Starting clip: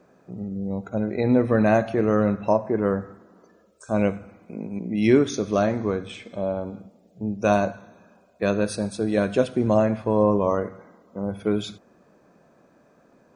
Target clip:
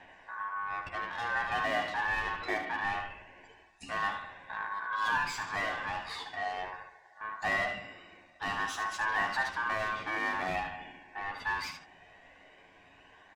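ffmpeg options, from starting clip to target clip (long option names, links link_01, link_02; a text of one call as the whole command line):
ffmpeg -i in.wav -filter_complex "[0:a]lowpass=6400,asplit=2[link_01][link_02];[link_02]highpass=frequency=720:poles=1,volume=20dB,asoftclip=type=tanh:threshold=-21dB[link_03];[link_01][link_03]amix=inputs=2:normalize=0,lowpass=frequency=4600:poles=1,volume=-6dB,aphaser=in_gain=1:out_gain=1:delay=2.4:decay=0.35:speed=0.22:type=triangular,aeval=exprs='val(0)*sin(2*PI*1300*n/s)':channel_layout=same,aecho=1:1:11|75:0.596|0.422,volume=-8.5dB" out.wav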